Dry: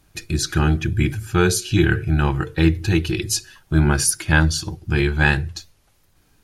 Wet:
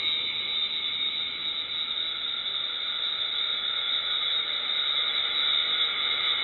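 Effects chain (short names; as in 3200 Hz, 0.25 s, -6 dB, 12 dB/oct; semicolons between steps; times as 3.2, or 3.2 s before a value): inverted band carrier 3800 Hz; Paulstretch 15×, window 1.00 s, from 4.61; gain -7.5 dB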